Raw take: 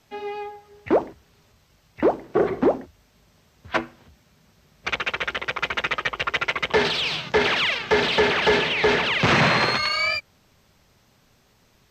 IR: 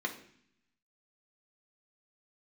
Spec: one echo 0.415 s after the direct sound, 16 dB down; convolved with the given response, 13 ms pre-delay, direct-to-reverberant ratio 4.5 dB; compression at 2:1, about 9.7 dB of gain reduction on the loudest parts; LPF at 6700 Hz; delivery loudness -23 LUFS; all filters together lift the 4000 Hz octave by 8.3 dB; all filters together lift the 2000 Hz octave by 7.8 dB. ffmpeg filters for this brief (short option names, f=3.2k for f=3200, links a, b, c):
-filter_complex "[0:a]lowpass=6.7k,equalizer=f=2k:t=o:g=7,equalizer=f=4k:t=o:g=8.5,acompressor=threshold=-29dB:ratio=2,aecho=1:1:415:0.158,asplit=2[a][b];[1:a]atrim=start_sample=2205,adelay=13[c];[b][c]afir=irnorm=-1:irlink=0,volume=-9dB[d];[a][d]amix=inputs=2:normalize=0"